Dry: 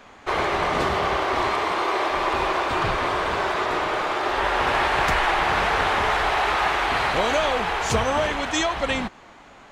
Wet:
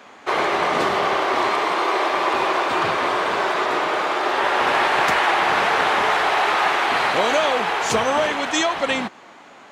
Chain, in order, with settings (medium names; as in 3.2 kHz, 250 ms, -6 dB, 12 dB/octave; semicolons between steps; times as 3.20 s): high-pass 200 Hz 12 dB/octave; trim +3 dB